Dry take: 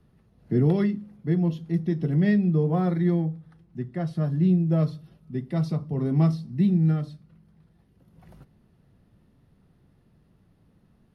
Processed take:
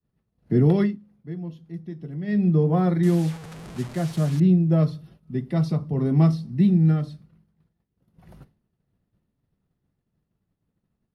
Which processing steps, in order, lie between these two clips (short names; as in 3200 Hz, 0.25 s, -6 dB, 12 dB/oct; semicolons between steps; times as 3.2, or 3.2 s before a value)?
3.03–4.4 delta modulation 64 kbps, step -36.5 dBFS; expander -48 dBFS; 0.82–2.43 dip -13 dB, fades 0.16 s; gain +3 dB